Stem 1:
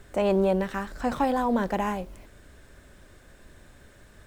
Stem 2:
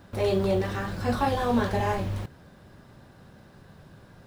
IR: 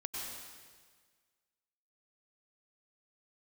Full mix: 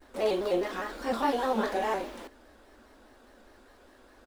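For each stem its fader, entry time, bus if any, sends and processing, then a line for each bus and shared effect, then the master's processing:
-15.0 dB, 0.00 s, no send, comb 3.4 ms, depth 87%
-1.5 dB, 14 ms, no send, elliptic high-pass 250 Hz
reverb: none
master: vibrato with a chosen wave square 4.9 Hz, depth 100 cents

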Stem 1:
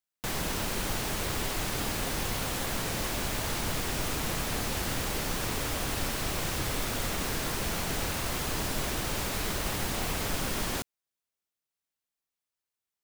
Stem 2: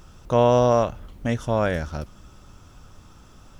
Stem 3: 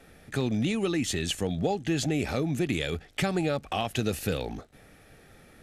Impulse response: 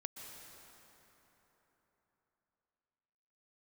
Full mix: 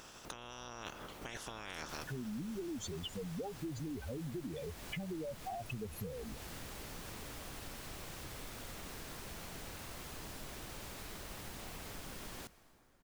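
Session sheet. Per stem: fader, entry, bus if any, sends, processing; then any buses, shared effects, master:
-16.5 dB, 1.65 s, send -9 dB, none
-16.5 dB, 0.00 s, send -9 dB, spectral peaks clipped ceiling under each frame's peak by 28 dB; compressor with a negative ratio -29 dBFS, ratio -1
-4.5 dB, 1.75 s, no send, spectral contrast enhancement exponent 3.8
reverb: on, RT60 3.9 s, pre-delay 113 ms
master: compression 3:1, threshold -42 dBFS, peak gain reduction 10.5 dB

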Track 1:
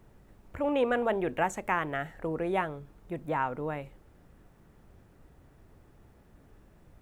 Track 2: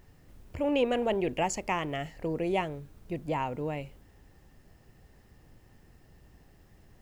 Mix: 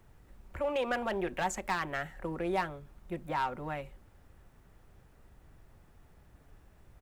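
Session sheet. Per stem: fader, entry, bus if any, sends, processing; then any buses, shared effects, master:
+0.5 dB, 0.00 s, no send, peaking EQ 240 Hz -14 dB 2 oct; hard clipper -25.5 dBFS, distortion -13 dB
-5.0 dB, 5 ms, no send, local Wiener filter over 25 samples; peak limiter -25 dBFS, peak gain reduction 8.5 dB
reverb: none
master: none

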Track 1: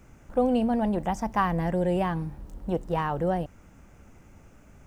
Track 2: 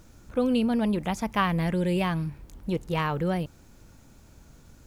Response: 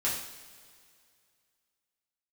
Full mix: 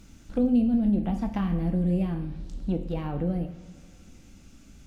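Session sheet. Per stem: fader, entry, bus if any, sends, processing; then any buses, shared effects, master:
+1.0 dB, 0.00 s, send -10.5 dB, low-pass that closes with the level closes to 530 Hz, closed at -21.5 dBFS; ten-band graphic EQ 125 Hz -7 dB, 250 Hz +4 dB, 500 Hz -10 dB, 1 kHz -11 dB, 2 kHz -6 dB, 4 kHz +11 dB
-3.5 dB, 0.00 s, send -19 dB, flange 0.65 Hz, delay 9.1 ms, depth 5.7 ms, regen +67%; auto duck -12 dB, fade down 0.65 s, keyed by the first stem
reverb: on, pre-delay 3 ms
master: none

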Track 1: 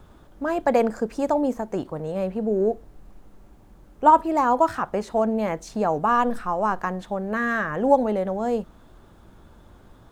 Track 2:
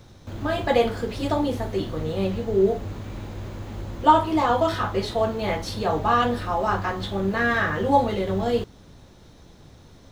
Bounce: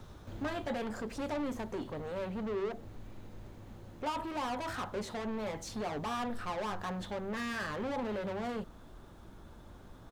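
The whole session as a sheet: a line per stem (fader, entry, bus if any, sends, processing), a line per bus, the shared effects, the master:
-2.5 dB, 0.00 s, no send, peak limiter -16.5 dBFS, peak gain reduction 11.5 dB; saturation -33 dBFS, distortion -5 dB
-6.5 dB, 0.6 ms, no send, compression 1.5:1, threshold -25 dBFS, peak gain reduction 5.5 dB; auto duck -11 dB, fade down 0.80 s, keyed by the first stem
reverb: none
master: none

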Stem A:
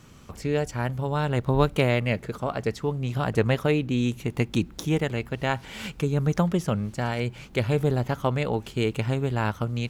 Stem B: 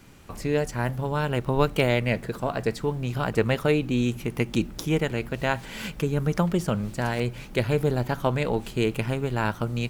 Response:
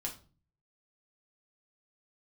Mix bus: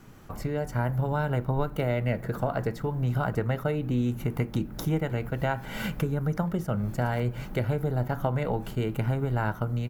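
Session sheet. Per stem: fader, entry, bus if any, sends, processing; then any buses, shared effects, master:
-7.0 dB, 0.00 s, no send, compression, threshold -31 dBFS, peak gain reduction 15.5 dB
-2.5 dB, 1.3 ms, send -8 dB, high-order bell 4.7 kHz -13 dB 2.3 oct; compression 4:1, threshold -29 dBFS, peak gain reduction 12 dB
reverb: on, RT60 0.40 s, pre-delay 5 ms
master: level rider gain up to 4 dB; attacks held to a fixed rise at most 490 dB/s

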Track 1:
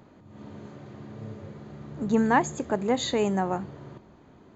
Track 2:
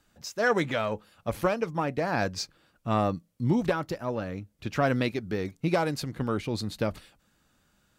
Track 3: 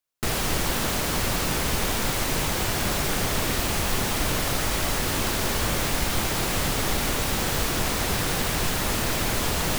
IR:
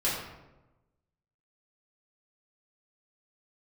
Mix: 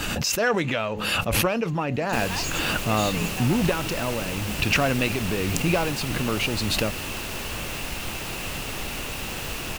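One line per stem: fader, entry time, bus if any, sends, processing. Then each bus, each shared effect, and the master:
-1.0 dB, 0.00 s, no send, tilt EQ +4.5 dB/octave; valve stage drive 30 dB, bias 0.55
+1.0 dB, 0.00 s, no send, swell ahead of each attack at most 21 dB/s
-7.5 dB, 1.90 s, no send, none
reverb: none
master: peaking EQ 2.7 kHz +11.5 dB 0.24 oct

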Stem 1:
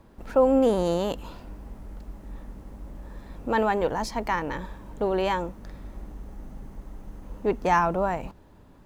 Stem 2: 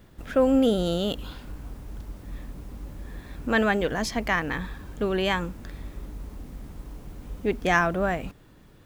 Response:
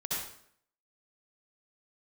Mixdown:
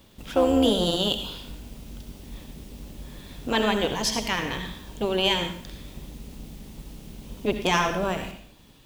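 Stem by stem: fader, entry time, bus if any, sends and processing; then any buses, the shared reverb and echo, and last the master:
-1.0 dB, 0.00 s, send -14 dB, AM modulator 190 Hz, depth 85%
-10.0 dB, 0.00 s, send -7.5 dB, resonant high shelf 2 kHz +13 dB, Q 1.5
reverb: on, RT60 0.65 s, pre-delay 58 ms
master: none

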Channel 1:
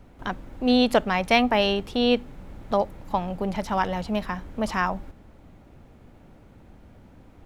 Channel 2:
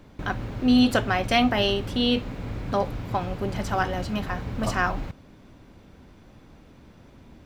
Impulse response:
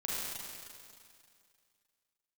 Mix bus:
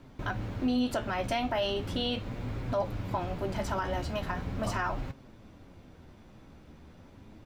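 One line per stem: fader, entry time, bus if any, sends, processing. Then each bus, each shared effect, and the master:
-8.5 dB, 0.00 s, no send, Chebyshev low-pass 1.5 kHz, order 10
+0.5 dB, 0.6 ms, no send, compression 2:1, threshold -24 dBFS, peak gain reduction 5.5 dB; flange 0.39 Hz, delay 7.3 ms, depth 8 ms, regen +46%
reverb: none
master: peak limiter -21 dBFS, peak gain reduction 7.5 dB

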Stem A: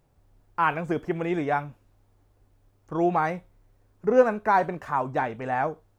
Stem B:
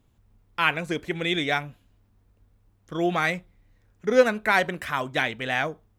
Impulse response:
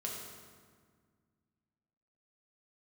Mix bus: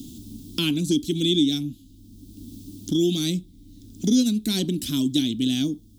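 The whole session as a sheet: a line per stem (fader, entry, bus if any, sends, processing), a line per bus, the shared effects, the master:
-7.0 dB, 0.00 s, no send, none
+2.5 dB, 0.00 s, no send, none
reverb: none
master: FFT filter 160 Hz 0 dB, 290 Hz +14 dB, 490 Hz -18 dB, 1.9 kHz -30 dB, 3.4 kHz +6 dB, 5.3 kHz +9 dB; three bands compressed up and down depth 70%

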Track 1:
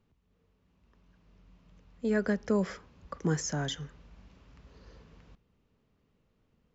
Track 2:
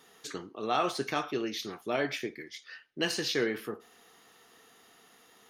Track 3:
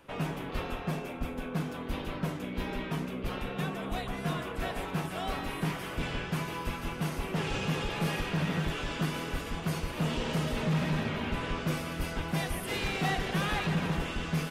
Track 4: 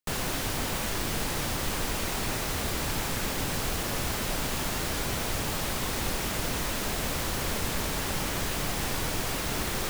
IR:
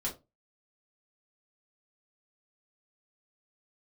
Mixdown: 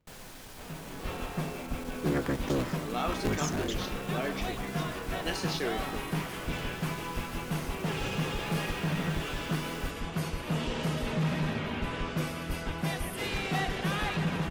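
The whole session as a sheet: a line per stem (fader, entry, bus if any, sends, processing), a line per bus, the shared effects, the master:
-2.5 dB, 0.00 s, no send, cycle switcher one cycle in 3, inverted
-4.5 dB, 2.25 s, no send, none
-11.5 dB, 0.50 s, no send, level rider gain up to 11 dB
-18.0 dB, 0.00 s, send -9 dB, one-sided clip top -28.5 dBFS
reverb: on, RT60 0.25 s, pre-delay 4 ms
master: none

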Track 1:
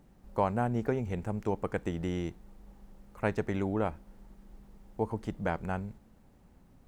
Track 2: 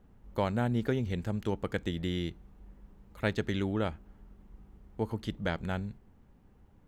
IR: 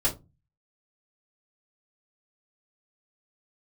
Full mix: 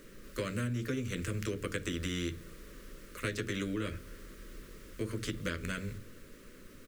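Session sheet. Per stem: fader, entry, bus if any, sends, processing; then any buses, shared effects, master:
+1.5 dB, 0.00 s, no send, Chebyshev high-pass 470 Hz, order 2; spectrum-flattening compressor 2:1
-1.5 dB, 12 ms, polarity flipped, send -15.5 dB, none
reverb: on, RT60 0.25 s, pre-delay 3 ms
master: Butterworth band-stop 800 Hz, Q 1; compression 6:1, threshold -31 dBFS, peak gain reduction 8.5 dB

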